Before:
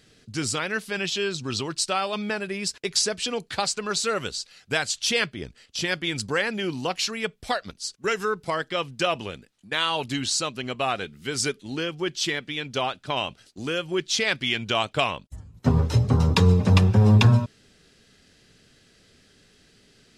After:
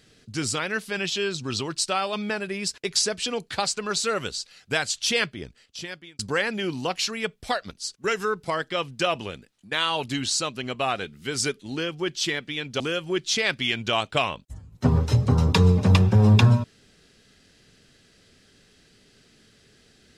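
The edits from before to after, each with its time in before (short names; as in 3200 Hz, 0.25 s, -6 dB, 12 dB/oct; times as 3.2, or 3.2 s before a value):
5.24–6.19 fade out
12.8–13.62 cut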